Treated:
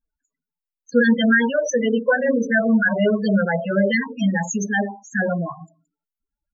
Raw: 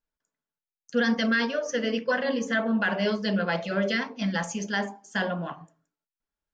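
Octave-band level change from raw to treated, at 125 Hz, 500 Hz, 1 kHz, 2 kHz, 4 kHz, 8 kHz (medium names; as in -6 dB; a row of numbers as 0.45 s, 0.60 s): +8.0 dB, +7.5 dB, +4.0 dB, +7.0 dB, -0.5 dB, no reading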